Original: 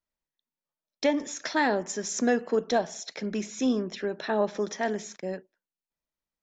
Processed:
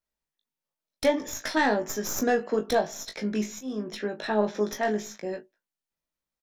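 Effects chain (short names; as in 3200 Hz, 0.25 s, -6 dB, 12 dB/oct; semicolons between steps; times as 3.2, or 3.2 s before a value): tracing distortion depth 0.048 ms; 3.48–4.03 auto swell 0.35 s; early reflections 19 ms -5 dB, 38 ms -15 dB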